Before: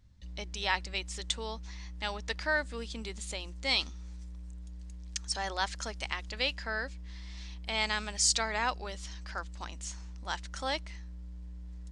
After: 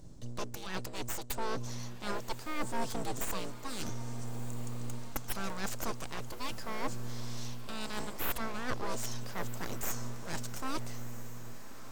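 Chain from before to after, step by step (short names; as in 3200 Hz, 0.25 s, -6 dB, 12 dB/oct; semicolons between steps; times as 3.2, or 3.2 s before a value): ending faded out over 2.19 s; reverse; compressor 12:1, threshold -45 dBFS, peak gain reduction 22 dB; reverse; graphic EQ 125/250/500/2000/4000/8000 Hz -4/+4/+9/-11/-5/+8 dB; full-wave rectifier; diffused feedback echo 1.316 s, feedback 57%, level -12.5 dB; gain +13 dB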